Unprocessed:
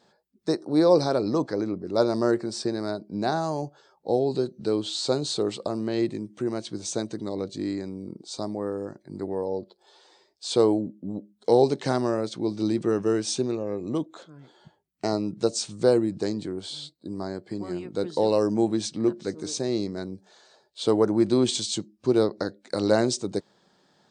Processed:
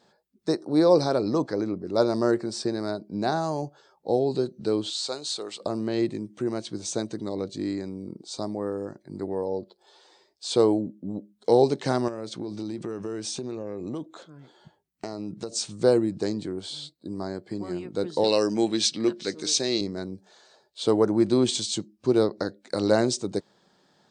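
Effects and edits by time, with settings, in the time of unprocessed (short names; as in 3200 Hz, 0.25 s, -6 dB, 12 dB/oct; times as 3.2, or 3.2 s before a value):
4.9–5.61 HPF 1300 Hz 6 dB/oct
12.08–15.52 compressor 12:1, threshold -28 dBFS
18.24–19.81 weighting filter D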